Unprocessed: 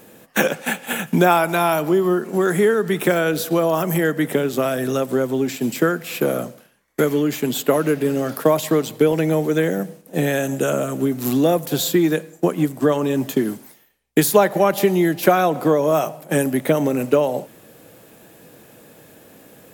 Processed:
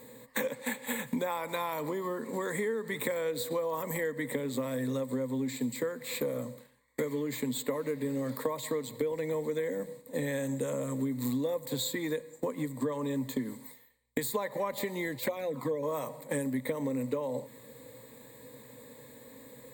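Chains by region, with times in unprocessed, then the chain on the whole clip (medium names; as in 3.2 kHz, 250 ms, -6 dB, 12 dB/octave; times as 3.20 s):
15.17–15.83 s: hum notches 60/120/180/240 Hz + touch-sensitive flanger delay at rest 2.2 ms, full sweep at -10.5 dBFS
whole clip: rippled EQ curve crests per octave 1, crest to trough 15 dB; compression 4:1, threshold -23 dBFS; trim -8 dB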